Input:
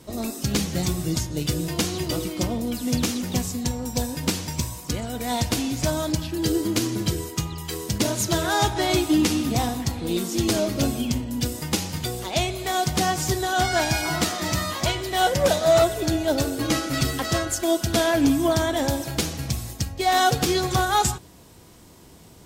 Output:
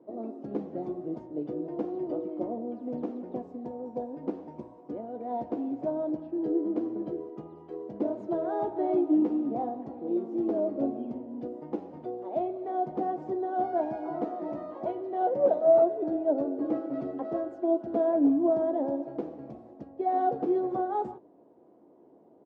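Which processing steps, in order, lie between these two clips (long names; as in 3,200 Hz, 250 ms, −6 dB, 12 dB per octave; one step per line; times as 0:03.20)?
Chebyshev band-pass filter 290–700 Hz, order 2
double-tracking delay 14 ms −11 dB
level −3 dB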